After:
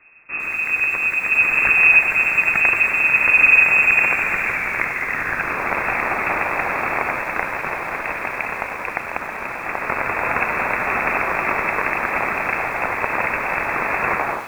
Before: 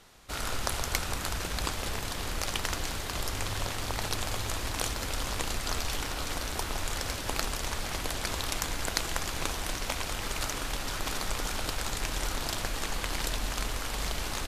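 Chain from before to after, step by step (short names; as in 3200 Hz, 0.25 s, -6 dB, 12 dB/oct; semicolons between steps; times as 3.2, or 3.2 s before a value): tape stop at the end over 0.59 s; bell 78 Hz +14.5 dB 0.22 oct; echo with dull and thin repeats by turns 0.351 s, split 2000 Hz, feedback 67%, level -13 dB; AGC gain up to 16 dB; high-pass sweep 78 Hz -> 1800 Hz, 3.84–5.74; in parallel at +1.5 dB: limiter -7.5 dBFS, peak gain reduction 7.5 dB; on the sum: sample-and-hold 12×; air absorption 180 m; on a send at -19.5 dB: reverb RT60 5.6 s, pre-delay 81 ms; on the sum: inverted band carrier 2600 Hz; lo-fi delay 98 ms, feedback 80%, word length 5-bit, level -13.5 dB; gain -5 dB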